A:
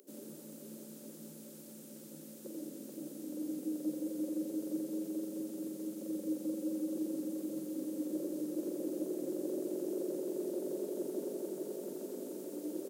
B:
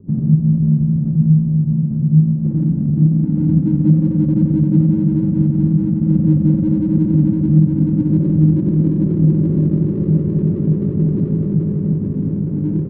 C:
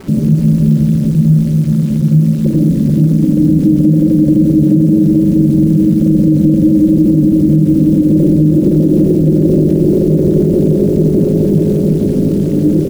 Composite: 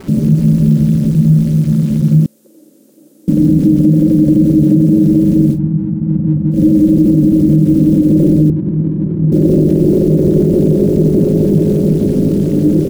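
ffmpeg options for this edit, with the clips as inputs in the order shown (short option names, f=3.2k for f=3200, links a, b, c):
-filter_complex "[1:a]asplit=2[a][b];[2:a]asplit=4[c][d][e][f];[c]atrim=end=2.262[g];[0:a]atrim=start=2.258:end=3.282[h];[d]atrim=start=3.278:end=5.6[i];[a]atrim=start=5.5:end=6.59[j];[e]atrim=start=6.49:end=8.502[k];[b]atrim=start=8.498:end=9.322[l];[f]atrim=start=9.318[m];[g][h]acrossfade=d=0.004:c1=hsin:c2=hsin[n];[n][i]acrossfade=d=0.004:c1=hsin:c2=hsin[o];[o][j]acrossfade=d=0.1:c1=tri:c2=tri[p];[p][k]acrossfade=d=0.1:c1=tri:c2=tri[q];[q][l]acrossfade=d=0.004:c1=hsin:c2=hsin[r];[r][m]acrossfade=d=0.004:c1=hsin:c2=hsin"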